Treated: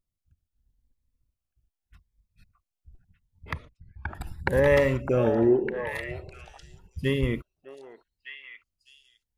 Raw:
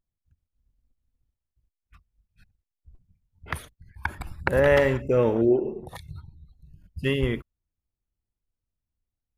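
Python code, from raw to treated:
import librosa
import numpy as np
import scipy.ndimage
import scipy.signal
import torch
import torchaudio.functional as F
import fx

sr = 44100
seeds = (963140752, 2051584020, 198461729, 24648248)

p1 = fx.spacing_loss(x, sr, db_at_10k=33, at=(3.53, 4.15))
p2 = p1 + fx.echo_stepped(p1, sr, ms=606, hz=840.0, octaves=1.4, feedback_pct=70, wet_db=-3.0, dry=0)
y = fx.notch_cascade(p2, sr, direction='rising', hz=0.82)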